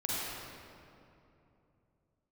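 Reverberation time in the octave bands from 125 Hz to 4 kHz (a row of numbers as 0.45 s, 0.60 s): 3.8 s, 3.5 s, 3.1 s, 2.7 s, 2.1 s, 1.6 s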